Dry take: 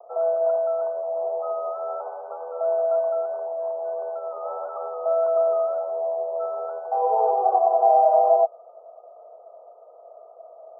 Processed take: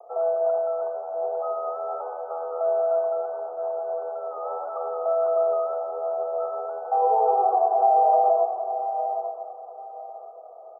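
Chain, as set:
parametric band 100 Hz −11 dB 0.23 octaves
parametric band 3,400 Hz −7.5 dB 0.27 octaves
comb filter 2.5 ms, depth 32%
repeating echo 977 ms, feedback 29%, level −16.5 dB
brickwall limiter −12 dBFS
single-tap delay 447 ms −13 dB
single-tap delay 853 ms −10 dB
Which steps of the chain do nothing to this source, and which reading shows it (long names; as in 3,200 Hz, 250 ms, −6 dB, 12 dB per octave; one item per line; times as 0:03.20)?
parametric band 100 Hz: nothing at its input below 380 Hz
parametric band 3,400 Hz: nothing at its input above 1,400 Hz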